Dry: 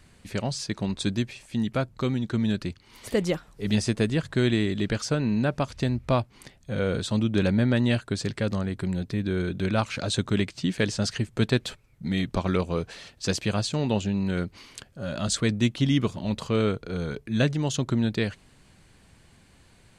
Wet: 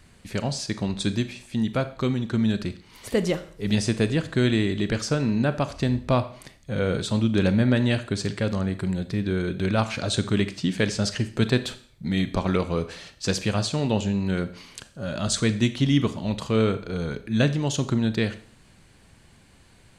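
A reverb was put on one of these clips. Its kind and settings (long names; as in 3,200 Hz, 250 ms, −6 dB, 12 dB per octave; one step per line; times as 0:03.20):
four-comb reverb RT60 0.51 s, combs from 28 ms, DRR 11.5 dB
level +1.5 dB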